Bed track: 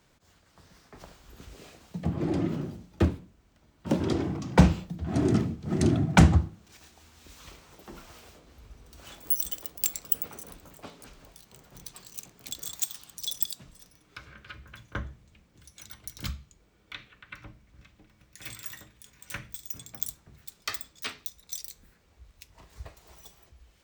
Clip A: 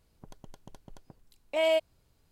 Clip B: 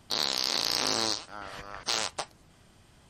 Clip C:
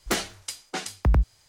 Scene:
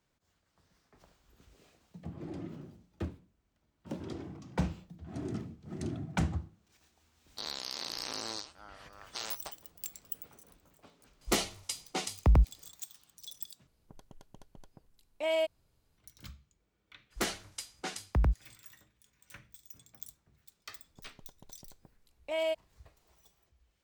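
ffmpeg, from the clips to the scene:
-filter_complex "[3:a]asplit=2[s0][s1];[1:a]asplit=2[s2][s3];[0:a]volume=0.2[s4];[s0]equalizer=f=1600:w=5.5:g=-14[s5];[s4]asplit=2[s6][s7];[s6]atrim=end=13.674[s8];[s2]atrim=end=2.31,asetpts=PTS-STARTPTS,volume=0.596[s9];[s7]atrim=start=15.976[s10];[2:a]atrim=end=3.09,asetpts=PTS-STARTPTS,volume=0.282,afade=t=in:d=0.004:c=hsin,afade=t=out:st=3.086:d=0.004:c=hsin,adelay=7270[s11];[s5]atrim=end=1.48,asetpts=PTS-STARTPTS,volume=0.75,afade=t=in:d=0.004:c=hsin,afade=t=out:st=1.476:d=0.004:c=hsin,adelay=11210[s12];[s1]atrim=end=1.48,asetpts=PTS-STARTPTS,volume=0.447,afade=t=in:d=0.02,afade=t=out:st=1.46:d=0.02,adelay=17100[s13];[s3]atrim=end=2.31,asetpts=PTS-STARTPTS,volume=0.473,afade=t=in:d=0.004:c=hsin,afade=t=out:st=2.306:d=0.004:c=hsin,adelay=20750[s14];[s8][s9]acrossfade=d=0.004:c1=hsin:c2=hsin[s15];[s15][s10]acrossfade=d=0.004:c1=hsin:c2=hsin[s16];[s16][s11][s12][s13][s14]amix=inputs=5:normalize=0"

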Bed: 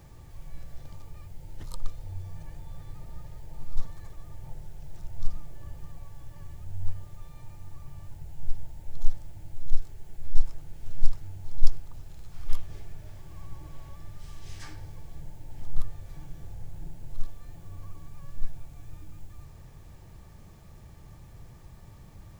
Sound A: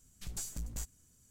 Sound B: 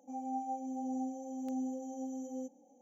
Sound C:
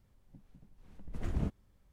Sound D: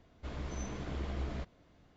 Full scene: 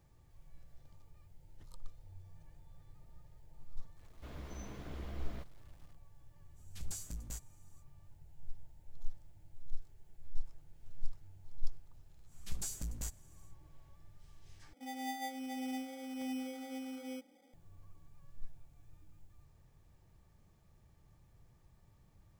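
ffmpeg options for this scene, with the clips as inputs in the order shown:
-filter_complex "[1:a]asplit=2[s0][s1];[0:a]volume=0.158[s2];[4:a]acrusher=bits=9:mix=0:aa=0.000001[s3];[2:a]acrusher=samples=16:mix=1:aa=0.000001[s4];[s2]asplit=2[s5][s6];[s5]atrim=end=14.734[s7];[s4]atrim=end=2.81,asetpts=PTS-STARTPTS,volume=0.708[s8];[s6]atrim=start=17.536[s9];[s3]atrim=end=1.96,asetpts=PTS-STARTPTS,volume=0.447,afade=t=in:d=0.004:c=hsin,afade=t=out:st=1.956:d=0.004:c=hsin,adelay=3990[s10];[s0]atrim=end=1.3,asetpts=PTS-STARTPTS,volume=0.631,afade=t=in:d=0.05,afade=t=out:st=1.25:d=0.05,adelay=6540[s11];[s1]atrim=end=1.3,asetpts=PTS-STARTPTS,volume=0.944,afade=t=in:d=0.1,afade=t=out:st=1.2:d=0.1,adelay=12250[s12];[s7][s8]acrossfade=d=0.004:c1=hsin:c2=hsin[s13];[s13][s9]acrossfade=d=0.004:c1=hsin:c2=hsin[s14];[s14][s10][s11][s12]amix=inputs=4:normalize=0"

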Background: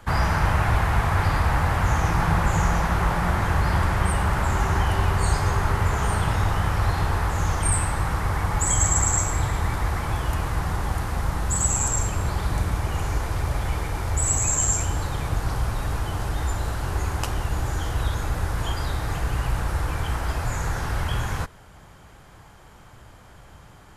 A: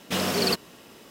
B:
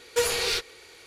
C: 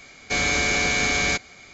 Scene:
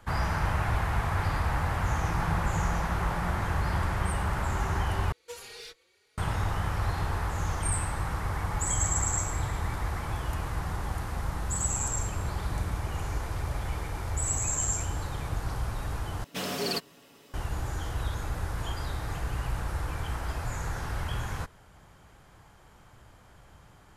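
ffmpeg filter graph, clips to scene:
-filter_complex "[0:a]volume=0.447[s0];[2:a]asplit=2[s1][s2];[s2]adelay=4.2,afreqshift=1.9[s3];[s1][s3]amix=inputs=2:normalize=1[s4];[1:a]aecho=1:1:7.1:0.46[s5];[s0]asplit=3[s6][s7][s8];[s6]atrim=end=5.124[s9];[s4]atrim=end=1.06,asetpts=PTS-STARTPTS,volume=0.178[s10];[s7]atrim=start=6.176:end=16.244[s11];[s5]atrim=end=1.1,asetpts=PTS-STARTPTS,volume=0.422[s12];[s8]atrim=start=17.336[s13];[s9][s10]acrossfade=d=0.004:c1=hsin:c2=hsin[s14];[s14][s11]acrossfade=d=0.004:c1=hsin:c2=hsin[s15];[s15][s12]acrossfade=d=0.004:c1=hsin:c2=hsin[s16];[s16][s13]acrossfade=d=0.004:c1=hsin:c2=hsin"

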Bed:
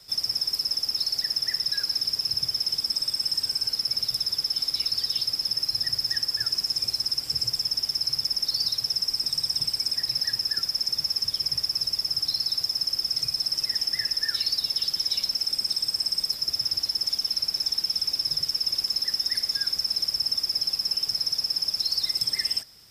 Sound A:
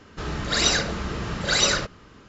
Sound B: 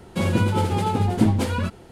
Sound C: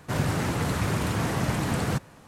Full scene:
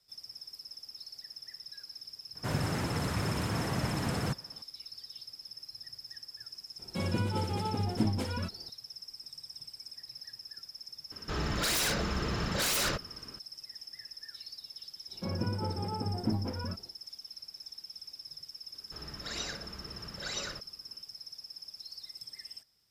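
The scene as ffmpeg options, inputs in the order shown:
-filter_complex "[2:a]asplit=2[s0][s1];[1:a]asplit=2[s2][s3];[0:a]volume=0.1[s4];[s2]aeval=exprs='0.0794*(abs(mod(val(0)/0.0794+3,4)-2)-1)':c=same[s5];[s1]lowpass=1500[s6];[3:a]atrim=end=2.27,asetpts=PTS-STARTPTS,volume=0.501,afade=t=in:d=0.004:c=hsin,afade=t=out:st=2.266:d=0.004:c=hsin,adelay=2350[s7];[s0]atrim=end=1.91,asetpts=PTS-STARTPTS,volume=0.282,afade=t=in:d=0.004:c=hsin,afade=t=out:st=1.906:d=0.004:c=hsin,adelay=6790[s8];[s5]atrim=end=2.28,asetpts=PTS-STARTPTS,volume=0.708,afade=t=in:d=0.004:c=hsin,afade=t=out:st=2.276:d=0.004:c=hsin,adelay=11110[s9];[s6]atrim=end=1.91,asetpts=PTS-STARTPTS,volume=0.224,afade=t=in:d=0.1,afade=t=out:st=1.81:d=0.1,adelay=15060[s10];[s3]atrim=end=2.28,asetpts=PTS-STARTPTS,volume=0.133,afade=t=in:d=0.004:c=hsin,afade=t=out:st=2.276:d=0.004:c=hsin,adelay=18740[s11];[s4][s7][s8][s9][s10][s11]amix=inputs=6:normalize=0"

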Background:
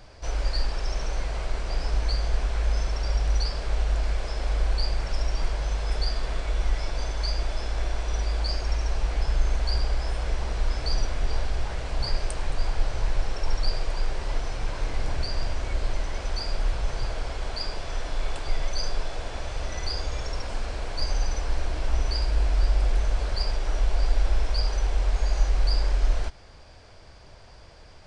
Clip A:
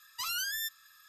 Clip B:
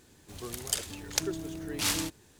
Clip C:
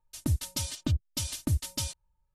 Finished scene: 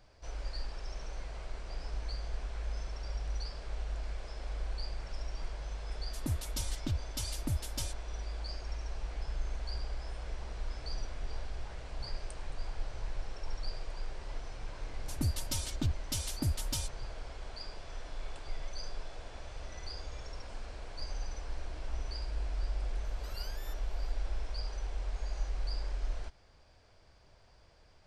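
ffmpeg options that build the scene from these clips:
-filter_complex "[3:a]asplit=2[s0][s1];[0:a]volume=0.224[s2];[s1]asoftclip=type=tanh:threshold=0.106[s3];[1:a]alimiter=level_in=2:limit=0.0631:level=0:latency=1:release=71,volume=0.501[s4];[s0]atrim=end=2.34,asetpts=PTS-STARTPTS,volume=0.473,afade=t=in:d=0.004:c=hsin,afade=t=out:st=2.336:d=0.004:c=hsin,adelay=6000[s5];[s3]atrim=end=2.34,asetpts=PTS-STARTPTS,volume=0.708,afade=t=in:d=0.004:c=hsin,afade=t=out:st=2.336:d=0.004:c=hsin,adelay=14950[s6];[s4]atrim=end=1.08,asetpts=PTS-STARTPTS,volume=0.168,afade=t=in:d=0.004:c=hsin,afade=t=out:st=1.076:d=0.004:c=hsin,adelay=23050[s7];[s2][s5][s6][s7]amix=inputs=4:normalize=0"

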